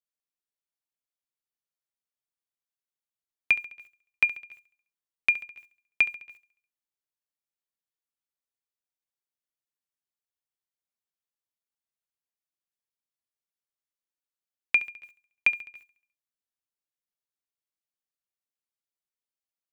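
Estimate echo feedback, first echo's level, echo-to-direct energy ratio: 54%, −16.0 dB, −14.5 dB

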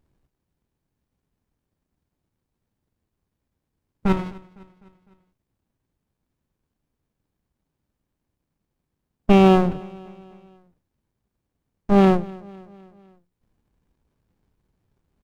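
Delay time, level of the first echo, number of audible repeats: 253 ms, −22.0 dB, 3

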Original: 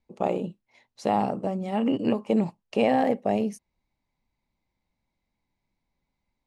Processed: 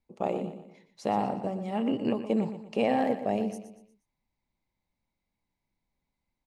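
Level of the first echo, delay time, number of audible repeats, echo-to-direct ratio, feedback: −11.0 dB, 119 ms, 4, −10.0 dB, 41%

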